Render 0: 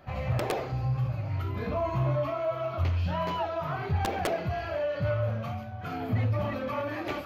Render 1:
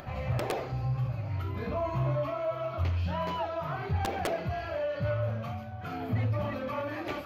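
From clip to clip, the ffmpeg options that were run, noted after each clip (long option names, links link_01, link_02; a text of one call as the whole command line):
ffmpeg -i in.wav -af "acompressor=mode=upward:threshold=-35dB:ratio=2.5,volume=-2dB" out.wav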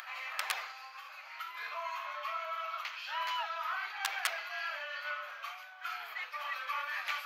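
ffmpeg -i in.wav -af "highpass=frequency=1200:width=0.5412,highpass=frequency=1200:width=1.3066,volume=5.5dB" out.wav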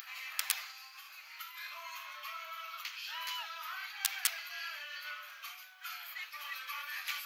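ffmpeg -i in.wav -af "aderivative,volume=7.5dB" out.wav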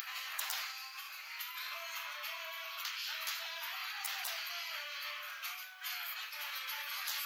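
ffmpeg -i in.wav -af "afftfilt=real='re*lt(hypot(re,im),0.0224)':imag='im*lt(hypot(re,im),0.0224)':win_size=1024:overlap=0.75,volume=5dB" out.wav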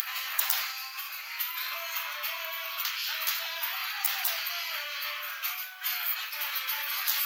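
ffmpeg -i in.wav -af "equalizer=frequency=15000:width_type=o:width=0.34:gain=11.5,volume=7.5dB" out.wav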